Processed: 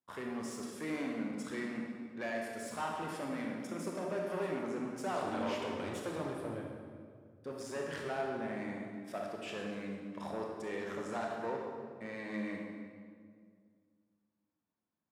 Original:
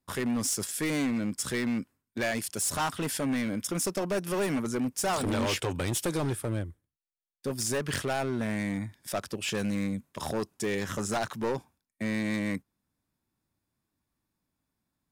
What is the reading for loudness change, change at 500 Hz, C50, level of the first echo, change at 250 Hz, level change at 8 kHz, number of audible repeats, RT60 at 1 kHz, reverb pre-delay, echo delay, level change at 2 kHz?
-9.0 dB, -5.5 dB, 1.0 dB, no echo, -9.0 dB, -19.5 dB, no echo, 1.8 s, 24 ms, no echo, -8.0 dB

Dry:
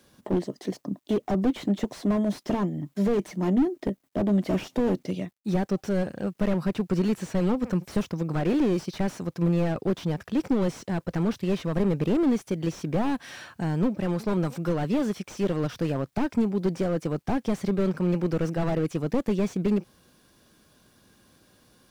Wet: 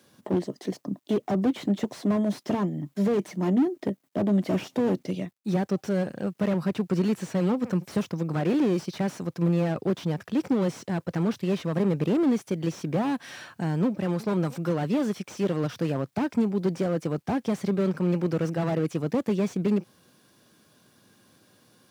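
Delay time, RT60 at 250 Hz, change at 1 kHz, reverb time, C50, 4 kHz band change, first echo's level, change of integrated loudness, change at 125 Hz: no echo, no reverb, 0.0 dB, no reverb, no reverb, 0.0 dB, no echo, 0.0 dB, 0.0 dB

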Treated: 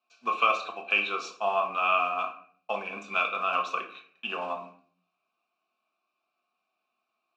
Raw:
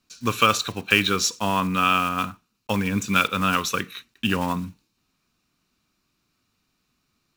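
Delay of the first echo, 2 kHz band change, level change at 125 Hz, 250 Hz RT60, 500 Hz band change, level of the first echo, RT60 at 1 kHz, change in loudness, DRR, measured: no echo, -5.0 dB, under -25 dB, 0.70 s, -3.5 dB, no echo, 0.50 s, -6.0 dB, 1.0 dB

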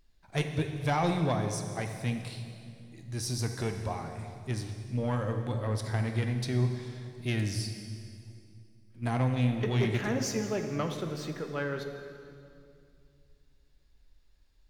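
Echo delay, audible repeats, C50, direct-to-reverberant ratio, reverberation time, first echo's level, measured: no echo, no echo, 6.0 dB, 5.0 dB, 2.4 s, no echo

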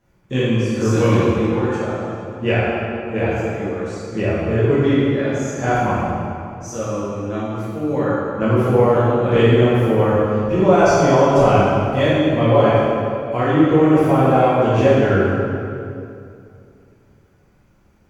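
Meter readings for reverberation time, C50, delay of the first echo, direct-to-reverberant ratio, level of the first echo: 2.5 s, -3.5 dB, no echo, -11.0 dB, no echo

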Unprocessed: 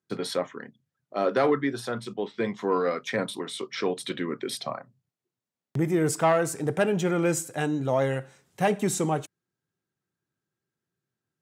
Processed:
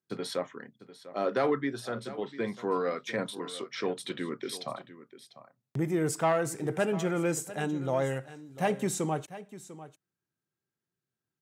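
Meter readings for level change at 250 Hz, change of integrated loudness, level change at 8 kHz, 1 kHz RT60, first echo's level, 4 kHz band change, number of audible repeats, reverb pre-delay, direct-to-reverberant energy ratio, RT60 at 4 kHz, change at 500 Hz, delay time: -4.5 dB, -4.5 dB, -4.5 dB, no reverb, -15.5 dB, -4.5 dB, 1, no reverb, no reverb, no reverb, -4.5 dB, 697 ms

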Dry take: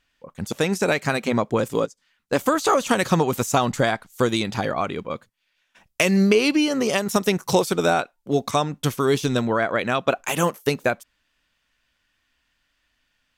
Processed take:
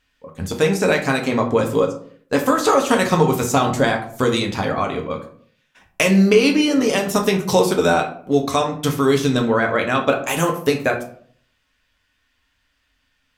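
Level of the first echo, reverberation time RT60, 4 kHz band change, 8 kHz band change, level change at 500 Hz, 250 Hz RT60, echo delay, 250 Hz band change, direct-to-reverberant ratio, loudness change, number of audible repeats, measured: no echo, 0.55 s, +3.0 dB, +2.5 dB, +4.0 dB, 0.65 s, no echo, +4.0 dB, 1.5 dB, +3.5 dB, no echo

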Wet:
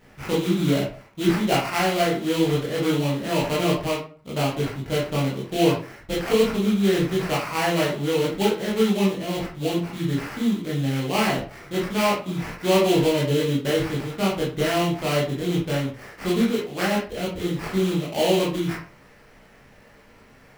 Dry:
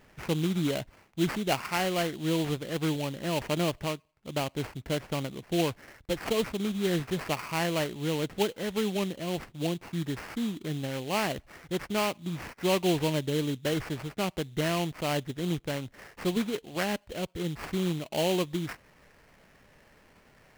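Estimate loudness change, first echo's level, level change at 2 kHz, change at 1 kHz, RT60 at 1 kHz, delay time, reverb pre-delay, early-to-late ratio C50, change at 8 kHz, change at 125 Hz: +7.5 dB, no echo, +6.5 dB, +7.5 dB, 0.40 s, no echo, 16 ms, 4.5 dB, +5.0 dB, +7.0 dB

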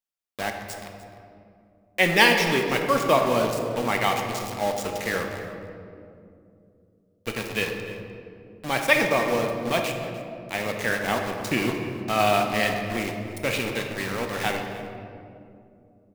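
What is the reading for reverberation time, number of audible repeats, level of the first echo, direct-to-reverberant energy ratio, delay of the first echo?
2.6 s, 1, -17.5 dB, 2.5 dB, 300 ms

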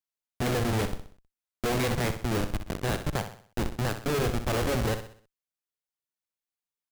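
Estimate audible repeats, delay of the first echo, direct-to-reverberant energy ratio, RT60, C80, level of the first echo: 4, 63 ms, no reverb, no reverb, no reverb, -9.5 dB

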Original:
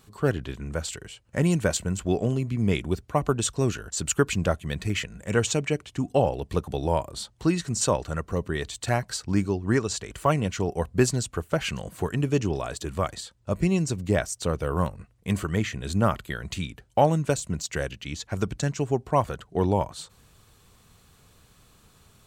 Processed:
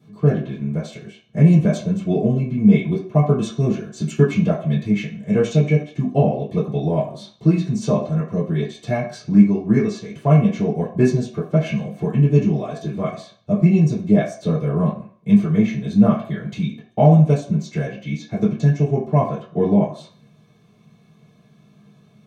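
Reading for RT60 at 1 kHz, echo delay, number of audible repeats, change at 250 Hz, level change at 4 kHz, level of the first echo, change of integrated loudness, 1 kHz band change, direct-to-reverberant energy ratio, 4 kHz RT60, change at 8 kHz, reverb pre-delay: 0.55 s, no echo, no echo, +11.0 dB, -5.0 dB, no echo, +8.0 dB, +0.5 dB, -10.0 dB, 0.50 s, under -10 dB, 3 ms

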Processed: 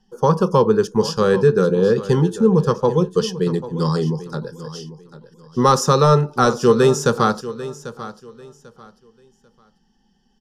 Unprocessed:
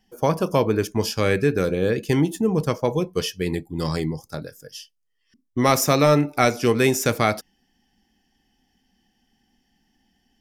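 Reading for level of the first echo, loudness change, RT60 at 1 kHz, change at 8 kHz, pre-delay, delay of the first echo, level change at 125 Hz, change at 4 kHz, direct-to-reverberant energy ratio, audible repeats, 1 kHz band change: -15.0 dB, +4.5 dB, no reverb, -0.5 dB, no reverb, 793 ms, +5.0 dB, +1.0 dB, no reverb, 2, +5.5 dB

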